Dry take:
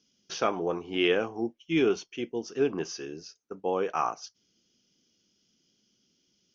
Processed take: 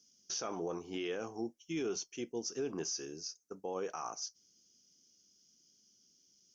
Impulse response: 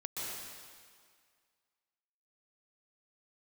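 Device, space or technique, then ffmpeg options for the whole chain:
over-bright horn tweeter: -af "highshelf=frequency=4400:width_type=q:width=1.5:gain=11.5,alimiter=limit=-22.5dB:level=0:latency=1:release=42,volume=-6.5dB"

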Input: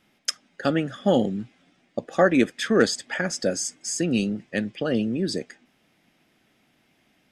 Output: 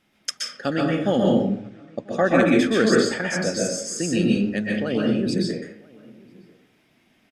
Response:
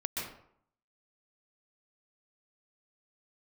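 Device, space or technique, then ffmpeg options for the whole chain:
bathroom: -filter_complex "[0:a]asplit=3[link_01][link_02][link_03];[link_01]afade=type=out:start_time=1.35:duration=0.02[link_04];[link_02]lowpass=8700,afade=type=in:start_time=1.35:duration=0.02,afade=type=out:start_time=2.25:duration=0.02[link_05];[link_03]afade=type=in:start_time=2.25:duration=0.02[link_06];[link_04][link_05][link_06]amix=inputs=3:normalize=0,asplit=2[link_07][link_08];[link_08]adelay=991.3,volume=-25dB,highshelf=frequency=4000:gain=-22.3[link_09];[link_07][link_09]amix=inputs=2:normalize=0[link_10];[1:a]atrim=start_sample=2205[link_11];[link_10][link_11]afir=irnorm=-1:irlink=0,volume=-1dB"

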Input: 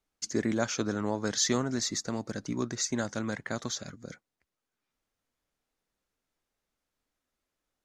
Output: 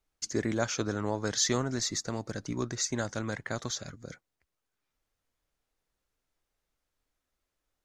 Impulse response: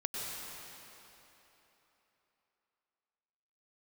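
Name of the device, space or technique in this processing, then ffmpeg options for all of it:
low shelf boost with a cut just above: -af "lowshelf=frequency=100:gain=7,equalizer=frequency=220:width_type=o:width=0.72:gain=-5"

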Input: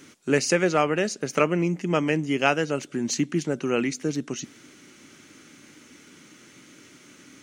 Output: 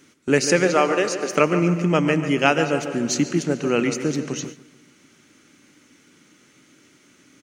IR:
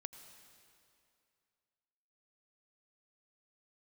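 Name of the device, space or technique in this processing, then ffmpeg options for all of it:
keyed gated reverb: -filter_complex "[0:a]asplit=3[link_01][link_02][link_03];[link_01]afade=type=out:start_time=0.67:duration=0.02[link_04];[link_02]highpass=frequency=280:width=0.5412,highpass=frequency=280:width=1.3066,afade=type=in:start_time=0.67:duration=0.02,afade=type=out:start_time=1.3:duration=0.02[link_05];[link_03]afade=type=in:start_time=1.3:duration=0.02[link_06];[link_04][link_05][link_06]amix=inputs=3:normalize=0,asplit=2[link_07][link_08];[link_08]adelay=145,lowpass=frequency=2400:poles=1,volume=-9.5dB,asplit=2[link_09][link_10];[link_10]adelay=145,lowpass=frequency=2400:poles=1,volume=0.53,asplit=2[link_11][link_12];[link_12]adelay=145,lowpass=frequency=2400:poles=1,volume=0.53,asplit=2[link_13][link_14];[link_14]adelay=145,lowpass=frequency=2400:poles=1,volume=0.53,asplit=2[link_15][link_16];[link_16]adelay=145,lowpass=frequency=2400:poles=1,volume=0.53,asplit=2[link_17][link_18];[link_18]adelay=145,lowpass=frequency=2400:poles=1,volume=0.53[link_19];[link_07][link_09][link_11][link_13][link_15][link_17][link_19]amix=inputs=7:normalize=0,asplit=3[link_20][link_21][link_22];[1:a]atrim=start_sample=2205[link_23];[link_21][link_23]afir=irnorm=-1:irlink=0[link_24];[link_22]apad=whole_len=342420[link_25];[link_24][link_25]sidechaingate=range=-33dB:threshold=-37dB:ratio=16:detection=peak,volume=9dB[link_26];[link_20][link_26]amix=inputs=2:normalize=0,volume=-5dB"

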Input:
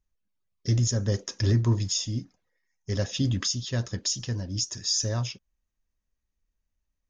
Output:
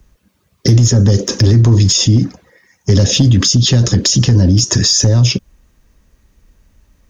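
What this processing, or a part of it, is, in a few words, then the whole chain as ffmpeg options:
mastering chain: -filter_complex "[0:a]highpass=frequency=46:poles=1,equalizer=frequency=750:width_type=o:width=0.59:gain=-3,acrossover=split=190|510|2900|7400[link_01][link_02][link_03][link_04][link_05];[link_01]acompressor=threshold=-32dB:ratio=4[link_06];[link_02]acompressor=threshold=-38dB:ratio=4[link_07];[link_03]acompressor=threshold=-52dB:ratio=4[link_08];[link_04]acompressor=threshold=-37dB:ratio=4[link_09];[link_05]acompressor=threshold=-46dB:ratio=4[link_10];[link_06][link_07][link_08][link_09][link_10]amix=inputs=5:normalize=0,acompressor=threshold=-34dB:ratio=1.5,asoftclip=type=tanh:threshold=-21.5dB,tiltshelf=frequency=1400:gain=4,asoftclip=type=hard:threshold=-24dB,alimiter=level_in=33dB:limit=-1dB:release=50:level=0:latency=1,volume=-2.5dB"

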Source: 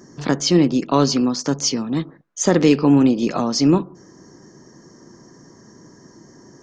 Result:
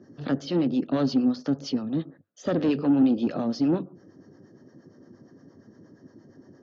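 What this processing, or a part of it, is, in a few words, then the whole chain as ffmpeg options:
guitar amplifier with harmonic tremolo: -filter_complex "[0:a]acrossover=split=550[link_01][link_02];[link_01]aeval=exprs='val(0)*(1-0.7/2+0.7/2*cos(2*PI*8.6*n/s))':channel_layout=same[link_03];[link_02]aeval=exprs='val(0)*(1-0.7/2-0.7/2*cos(2*PI*8.6*n/s))':channel_layout=same[link_04];[link_03][link_04]amix=inputs=2:normalize=0,asoftclip=type=tanh:threshold=-15.5dB,highpass=84,equalizer=frequency=100:width_type=q:width=4:gain=9,equalizer=frequency=260:width_type=q:width=4:gain=6,equalizer=frequency=560:width_type=q:width=4:gain=5,equalizer=frequency=1000:width_type=q:width=4:gain=-9,equalizer=frequency=2200:width_type=q:width=4:gain=-9,lowpass=frequency=4000:width=0.5412,lowpass=frequency=4000:width=1.3066,volume=-4dB"

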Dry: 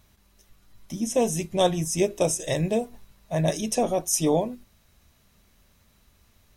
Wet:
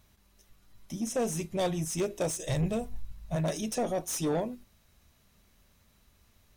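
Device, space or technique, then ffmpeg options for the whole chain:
saturation between pre-emphasis and de-emphasis: -filter_complex "[0:a]asplit=3[link_01][link_02][link_03];[link_01]afade=type=out:start_time=2.48:duration=0.02[link_04];[link_02]asubboost=boost=11:cutoff=110,afade=type=in:start_time=2.48:duration=0.02,afade=type=out:start_time=3.35:duration=0.02[link_05];[link_03]afade=type=in:start_time=3.35:duration=0.02[link_06];[link_04][link_05][link_06]amix=inputs=3:normalize=0,highshelf=frequency=2900:gain=8,asoftclip=type=tanh:threshold=-20dB,highshelf=frequency=2900:gain=-8,volume=-3.5dB"

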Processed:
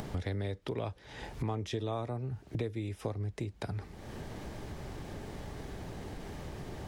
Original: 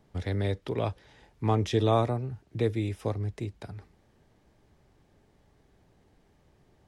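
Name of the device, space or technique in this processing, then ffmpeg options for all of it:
upward and downward compression: -af "acompressor=mode=upward:threshold=-34dB:ratio=2.5,acompressor=threshold=-39dB:ratio=6,volume=6dB"

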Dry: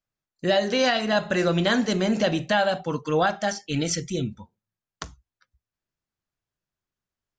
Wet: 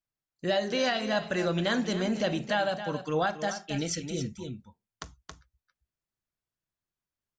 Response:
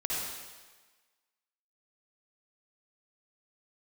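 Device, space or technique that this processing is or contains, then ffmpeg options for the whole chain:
ducked delay: -filter_complex "[0:a]asplit=3[link_01][link_02][link_03];[link_02]adelay=274,volume=-4.5dB[link_04];[link_03]apad=whole_len=337897[link_05];[link_04][link_05]sidechaincompress=threshold=-29dB:ratio=5:attack=49:release=492[link_06];[link_01][link_06]amix=inputs=2:normalize=0,volume=-6dB"

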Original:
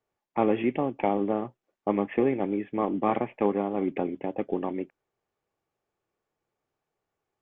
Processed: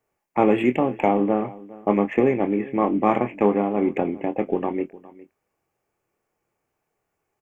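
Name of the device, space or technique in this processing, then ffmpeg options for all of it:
exciter from parts: -filter_complex "[0:a]asettb=1/sr,asplit=3[link_01][link_02][link_03];[link_01]atrim=end=0.464[link_04];[link_02]atrim=start=0.46:end=0.95,asetpts=PTS-STARTPTS,afade=type=in:duration=0.004:curve=qsin,afade=type=out:start_time=0.486:duration=0.004:curve=qsin,highshelf=frequency=3100:gain=5[link_05];[link_03]atrim=start=0.946[link_06];[link_04][link_05]acrossfade=duration=0.004:curve1=hsin:curve2=qsin[link_07];[link_07][link_06]acrossfade=duration=0.004:curve1=qsin:curve2=hsin,asplit=2[link_08][link_09];[link_09]adelay=24,volume=-9dB[link_10];[link_08][link_10]amix=inputs=2:normalize=0,aecho=1:1:409:0.1,asplit=2[link_11][link_12];[link_12]highpass=frequency=2100:width=0.5412,highpass=frequency=2100:width=1.3066,asoftclip=type=tanh:threshold=-39dB,highpass=frequency=2100:width=0.5412,highpass=frequency=2100:width=1.3066,volume=-5dB[link_13];[link_11][link_13]amix=inputs=2:normalize=0,volume=5.5dB"

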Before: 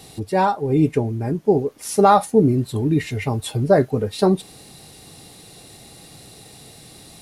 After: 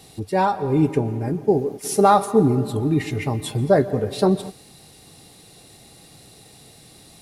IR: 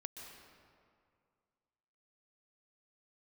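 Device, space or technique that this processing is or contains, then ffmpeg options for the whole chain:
keyed gated reverb: -filter_complex "[0:a]asettb=1/sr,asplit=3[link_01][link_02][link_03];[link_01]atrim=end=1.484[link_04];[link_02]atrim=start=1.48:end=2.06,asetpts=PTS-STARTPTS,afade=type=in:duration=0.004:curve=qsin,afade=type=out:start_time=0.576:duration=0.004:curve=qsin,highshelf=frequency=4900:gain=3.5[link_05];[link_03]atrim=start=2.056[link_06];[link_04][link_05]acrossfade=duration=0.004:curve1=hsin:curve2=qsin[link_07];[link_07][link_06]acrossfade=duration=0.004:curve1=qsin:curve2=hsin,asplit=3[link_08][link_09][link_10];[1:a]atrim=start_sample=2205[link_11];[link_09][link_11]afir=irnorm=-1:irlink=0[link_12];[link_10]apad=whole_len=317965[link_13];[link_12][link_13]sidechaingate=range=-33dB:threshold=-33dB:ratio=16:detection=peak,volume=-3.5dB[link_14];[link_08][link_14]amix=inputs=2:normalize=0,volume=-4dB"

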